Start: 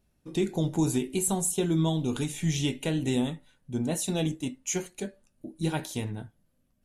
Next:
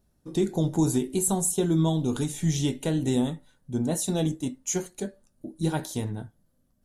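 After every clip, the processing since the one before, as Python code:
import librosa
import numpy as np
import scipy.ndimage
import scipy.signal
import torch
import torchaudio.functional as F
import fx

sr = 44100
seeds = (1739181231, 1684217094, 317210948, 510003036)

y = fx.peak_eq(x, sr, hz=2500.0, db=-9.5, octaves=0.72)
y = F.gain(torch.from_numpy(y), 2.5).numpy()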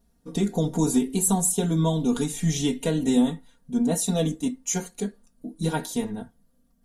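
y = x + 0.98 * np.pad(x, (int(4.3 * sr / 1000.0), 0))[:len(x)]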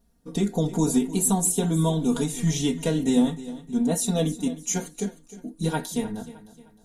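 y = fx.echo_feedback(x, sr, ms=308, feedback_pct=39, wet_db=-16.0)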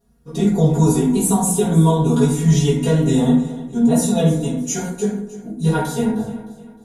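y = fx.rev_fdn(x, sr, rt60_s=0.79, lf_ratio=1.25, hf_ratio=0.45, size_ms=42.0, drr_db=-9.0)
y = F.gain(torch.from_numpy(y), -3.0).numpy()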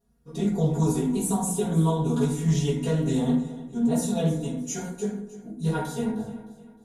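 y = fx.doppler_dist(x, sr, depth_ms=0.13)
y = F.gain(torch.from_numpy(y), -8.5).numpy()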